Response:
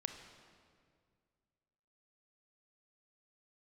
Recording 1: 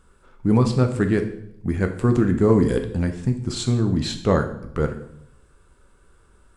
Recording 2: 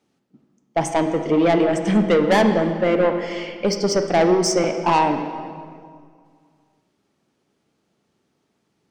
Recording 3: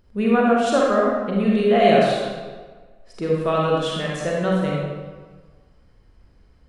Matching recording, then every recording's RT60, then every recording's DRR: 2; 0.75, 2.1, 1.5 s; 5.5, 6.0, -4.0 dB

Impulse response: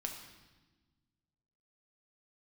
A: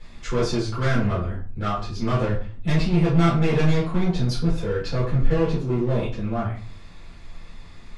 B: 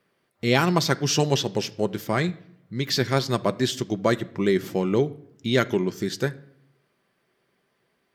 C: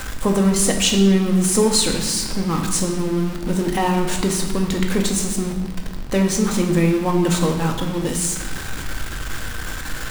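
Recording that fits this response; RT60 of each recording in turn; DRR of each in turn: C; 0.40, 0.70, 1.2 s; -9.5, 9.5, 2.0 dB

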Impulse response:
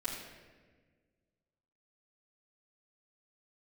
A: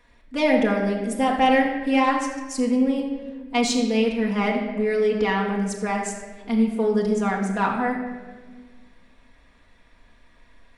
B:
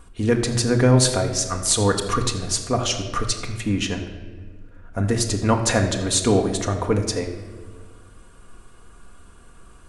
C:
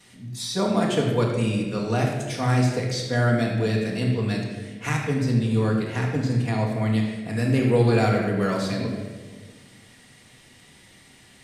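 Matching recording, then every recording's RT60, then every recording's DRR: C; 1.5, 1.5, 1.5 s; -2.0, 2.5, -9.5 dB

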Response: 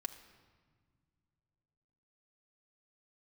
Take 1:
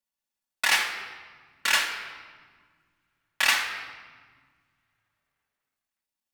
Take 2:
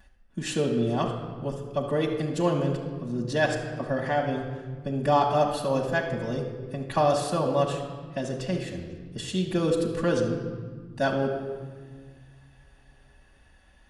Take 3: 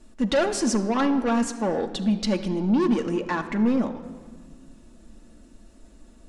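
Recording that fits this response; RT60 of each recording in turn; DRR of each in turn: 3; 1.6, 1.6, 1.8 s; -5.0, -9.0, 3.5 dB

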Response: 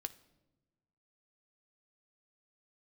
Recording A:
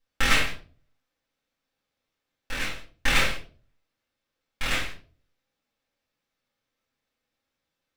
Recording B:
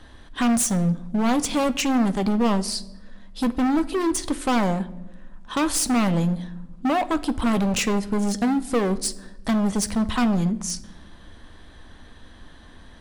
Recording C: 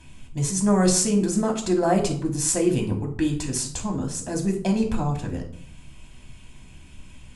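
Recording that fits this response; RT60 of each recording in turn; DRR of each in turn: B; 0.40, 1.1, 0.60 s; -8.0, 10.0, 1.5 dB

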